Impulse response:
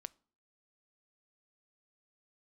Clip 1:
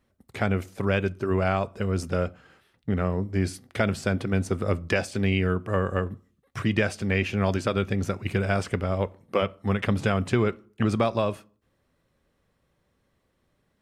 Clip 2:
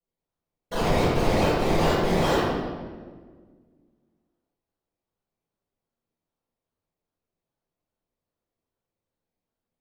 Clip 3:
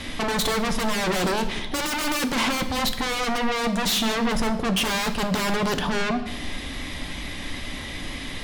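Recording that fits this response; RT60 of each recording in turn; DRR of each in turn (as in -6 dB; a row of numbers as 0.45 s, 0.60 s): 1; 0.50 s, 1.6 s, 1.1 s; 16.5 dB, -14.0 dB, 7.0 dB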